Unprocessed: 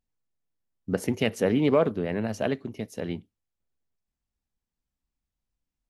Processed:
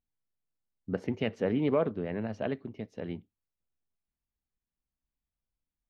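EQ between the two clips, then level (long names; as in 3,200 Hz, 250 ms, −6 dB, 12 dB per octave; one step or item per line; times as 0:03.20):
high-frequency loss of the air 220 metres
−5.0 dB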